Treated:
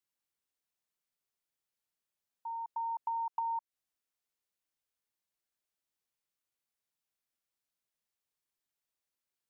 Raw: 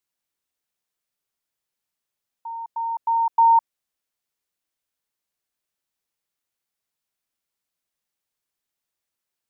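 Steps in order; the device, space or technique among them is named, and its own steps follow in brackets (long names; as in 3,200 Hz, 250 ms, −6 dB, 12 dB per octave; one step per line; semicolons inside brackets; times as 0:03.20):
serial compression, leveller first (downward compressor 2.5 to 1, threshold −18 dBFS, peak gain reduction 3.5 dB; downward compressor 6 to 1, threshold −27 dBFS, peak gain reduction 10 dB)
level −6.5 dB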